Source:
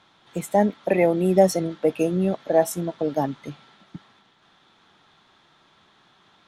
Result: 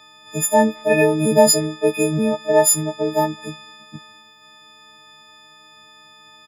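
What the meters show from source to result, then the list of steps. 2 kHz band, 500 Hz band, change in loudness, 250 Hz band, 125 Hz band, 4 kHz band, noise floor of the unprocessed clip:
+9.5 dB, +3.5 dB, +5.0 dB, +3.0 dB, +2.5 dB, +14.0 dB, -60 dBFS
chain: partials quantised in pitch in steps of 6 st; speakerphone echo 210 ms, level -29 dB; trim +3 dB

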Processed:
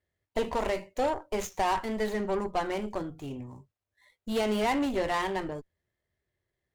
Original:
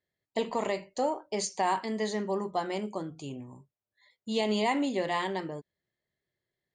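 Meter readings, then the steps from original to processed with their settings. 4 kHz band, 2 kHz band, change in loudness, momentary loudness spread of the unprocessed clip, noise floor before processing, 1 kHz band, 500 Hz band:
-2.0 dB, +1.5 dB, +1.0 dB, 14 LU, under -85 dBFS, +1.0 dB, +1.5 dB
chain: median filter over 9 samples; Chebyshev shaper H 5 -21 dB, 8 -21 dB, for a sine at -17.5 dBFS; resonant low shelf 110 Hz +8 dB, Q 1.5

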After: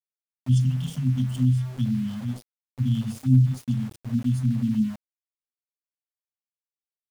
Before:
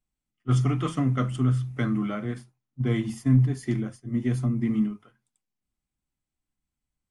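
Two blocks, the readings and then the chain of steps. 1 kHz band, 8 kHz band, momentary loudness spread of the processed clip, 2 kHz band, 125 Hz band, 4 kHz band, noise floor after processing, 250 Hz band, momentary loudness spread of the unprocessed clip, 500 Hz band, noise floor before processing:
under -10 dB, no reading, 11 LU, under -10 dB, +2.5 dB, +1.0 dB, under -85 dBFS, +0.5 dB, 10 LU, under -15 dB, under -85 dBFS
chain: FFT band-reject 260–2600 Hz; graphic EQ with 31 bands 100 Hz +11 dB, 315 Hz +8 dB, 630 Hz +9 dB; small samples zeroed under -38.5 dBFS

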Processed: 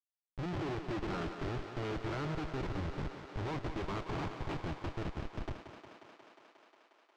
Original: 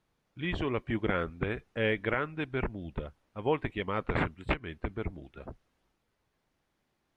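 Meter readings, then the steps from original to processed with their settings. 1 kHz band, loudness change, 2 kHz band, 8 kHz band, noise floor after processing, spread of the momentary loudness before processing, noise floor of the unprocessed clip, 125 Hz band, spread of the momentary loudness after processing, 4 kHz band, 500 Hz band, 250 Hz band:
-4.5 dB, -6.5 dB, -10.5 dB, no reading, under -85 dBFS, 11 LU, -79 dBFS, -2.5 dB, 15 LU, -5.0 dB, -8.0 dB, -4.5 dB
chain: high-pass 71 Hz 12 dB/octave; dynamic bell 1.4 kHz, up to +5 dB, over -46 dBFS, Q 3.3; in parallel at 0 dB: peak limiter -26 dBFS, peak gain reduction 12.5 dB; on the sum: static phaser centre 340 Hz, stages 8; Schmitt trigger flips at -37.5 dBFS; distance through air 160 m; on a send: thinning echo 179 ms, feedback 83%, high-pass 190 Hz, level -8.5 dB; on the sum: trim -1.5 dB

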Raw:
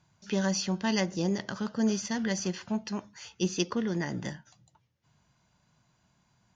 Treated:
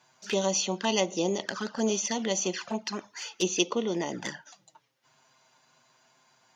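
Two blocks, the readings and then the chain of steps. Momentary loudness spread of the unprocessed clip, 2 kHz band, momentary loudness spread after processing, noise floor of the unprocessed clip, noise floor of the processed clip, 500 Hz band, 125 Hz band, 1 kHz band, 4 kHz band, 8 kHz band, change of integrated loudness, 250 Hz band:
9 LU, +1.5 dB, 10 LU, -71 dBFS, -67 dBFS, +5.0 dB, -5.5 dB, +4.5 dB, +5.0 dB, no reading, +1.5 dB, -2.5 dB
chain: high-pass 410 Hz 12 dB/octave; in parallel at -2.5 dB: compression 4:1, threshold -45 dBFS, peak gain reduction 16.5 dB; on the sum: touch-sensitive flanger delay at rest 8.2 ms, full sweep at -31 dBFS; trim +7 dB

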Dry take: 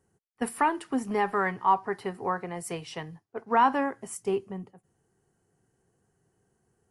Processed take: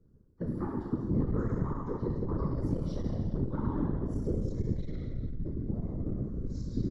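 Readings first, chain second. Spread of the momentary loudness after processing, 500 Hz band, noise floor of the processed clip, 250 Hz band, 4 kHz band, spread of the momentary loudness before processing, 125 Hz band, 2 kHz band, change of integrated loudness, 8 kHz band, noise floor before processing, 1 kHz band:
6 LU, -6.0 dB, -61 dBFS, +1.5 dB, under -10 dB, 16 LU, +13.0 dB, -22.0 dB, -6.0 dB, under -20 dB, -76 dBFS, -19.5 dB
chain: recorder AGC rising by 7.6 dB/s; ten-band graphic EQ 250 Hz +9 dB, 500 Hz +6 dB, 1 kHz +4 dB, 2 kHz -12 dB, 4 kHz +3 dB; compression 5:1, threshold -30 dBFS, peak gain reduction 15.5 dB; ever faster or slower copies 718 ms, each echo -6 st, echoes 3, each echo -6 dB; static phaser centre 2.7 kHz, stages 6; on a send: frequency-shifting echo 184 ms, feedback 42%, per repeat -110 Hz, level -15.5 dB; on the sum: gated-style reverb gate 490 ms falling, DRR -4 dB; whisper effect; RIAA curve playback; transformer saturation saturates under 94 Hz; trim -7.5 dB

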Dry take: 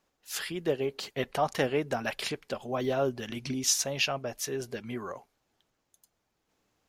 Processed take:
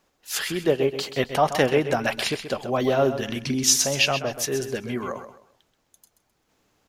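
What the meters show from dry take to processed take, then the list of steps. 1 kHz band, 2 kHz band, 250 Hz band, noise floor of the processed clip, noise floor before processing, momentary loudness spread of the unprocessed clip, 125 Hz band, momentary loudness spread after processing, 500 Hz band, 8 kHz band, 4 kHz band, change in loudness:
+8.0 dB, +8.0 dB, +8.0 dB, -71 dBFS, -79 dBFS, 11 LU, +8.0 dB, 11 LU, +8.0 dB, +8.0 dB, +8.0 dB, +8.0 dB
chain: feedback delay 130 ms, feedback 29%, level -10.5 dB; trim +7.5 dB

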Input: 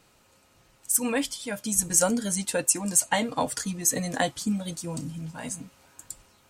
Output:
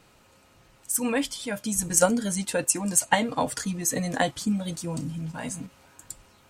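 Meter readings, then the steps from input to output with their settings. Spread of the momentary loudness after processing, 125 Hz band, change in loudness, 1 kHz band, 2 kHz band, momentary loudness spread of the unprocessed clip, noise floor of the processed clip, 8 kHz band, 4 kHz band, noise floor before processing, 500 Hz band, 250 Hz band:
15 LU, +2.5 dB, 0.0 dB, +2.5 dB, +2.0 dB, 15 LU, -59 dBFS, -1.5 dB, 0.0 dB, -62 dBFS, +2.0 dB, +1.5 dB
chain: tone controls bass +1 dB, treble -4 dB; in parallel at -1.5 dB: level held to a coarse grid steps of 22 dB

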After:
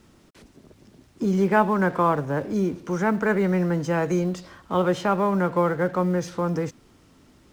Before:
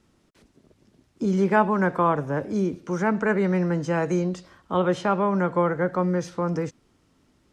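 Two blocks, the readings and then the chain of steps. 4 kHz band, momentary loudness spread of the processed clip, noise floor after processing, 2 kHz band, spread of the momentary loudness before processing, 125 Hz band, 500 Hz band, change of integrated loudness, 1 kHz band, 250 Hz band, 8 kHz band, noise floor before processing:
+2.0 dB, 7 LU, -56 dBFS, +0.5 dB, 7 LU, +0.5 dB, +0.5 dB, +0.5 dB, +0.5 dB, +0.5 dB, no reading, -65 dBFS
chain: companding laws mixed up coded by mu

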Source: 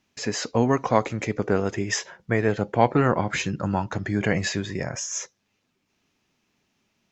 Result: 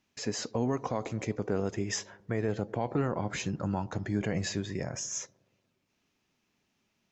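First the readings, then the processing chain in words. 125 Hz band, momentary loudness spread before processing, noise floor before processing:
-7.0 dB, 8 LU, -74 dBFS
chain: dynamic bell 1.9 kHz, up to -6 dB, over -39 dBFS, Q 0.7; feedback echo behind a low-pass 119 ms, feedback 59%, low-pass 990 Hz, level -23 dB; peak limiter -14 dBFS, peak gain reduction 9 dB; trim -5 dB

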